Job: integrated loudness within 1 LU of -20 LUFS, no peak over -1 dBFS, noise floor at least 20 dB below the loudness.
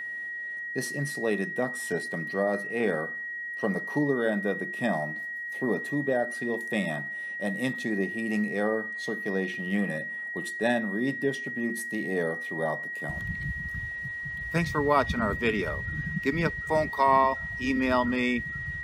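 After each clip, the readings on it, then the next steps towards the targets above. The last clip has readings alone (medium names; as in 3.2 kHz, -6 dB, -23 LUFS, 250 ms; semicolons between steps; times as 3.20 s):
steady tone 1.9 kHz; tone level -33 dBFS; loudness -28.5 LUFS; peak level -8.5 dBFS; loudness target -20.0 LUFS
-> band-stop 1.9 kHz, Q 30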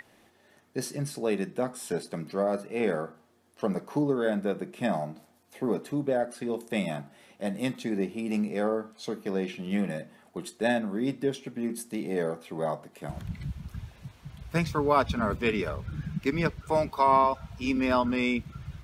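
steady tone not found; loudness -30.0 LUFS; peak level -9.0 dBFS; loudness target -20.0 LUFS
-> trim +10 dB; peak limiter -1 dBFS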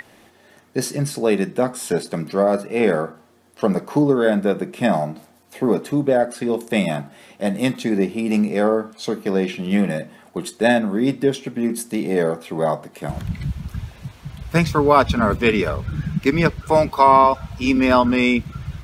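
loudness -20.0 LUFS; peak level -1.0 dBFS; noise floor -52 dBFS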